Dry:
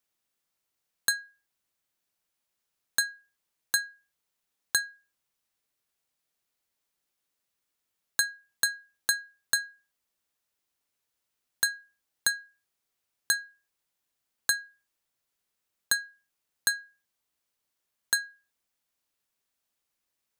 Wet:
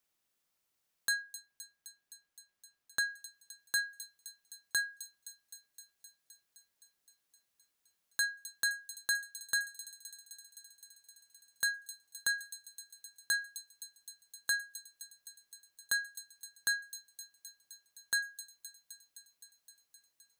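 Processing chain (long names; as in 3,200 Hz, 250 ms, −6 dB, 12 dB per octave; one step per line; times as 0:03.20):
0:01.22–0:03.10: high-shelf EQ 4,800 Hz −7 dB
brickwall limiter −19 dBFS, peak gain reduction 10 dB
delay with a high-pass on its return 259 ms, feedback 77%, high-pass 4,900 Hz, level −10 dB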